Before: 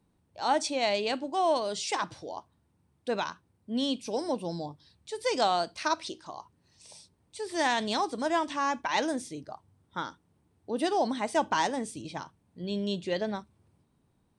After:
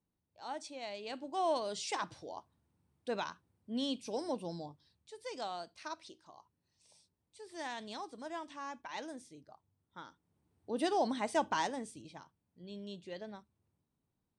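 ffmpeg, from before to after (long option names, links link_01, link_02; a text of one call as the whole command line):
ffmpeg -i in.wav -af "volume=4dB,afade=type=in:start_time=1:duration=0.42:silence=0.334965,afade=type=out:start_time=4.4:duration=0.79:silence=0.375837,afade=type=in:start_time=10.05:duration=0.76:silence=0.298538,afade=type=out:start_time=11.31:duration=0.91:silence=0.316228" out.wav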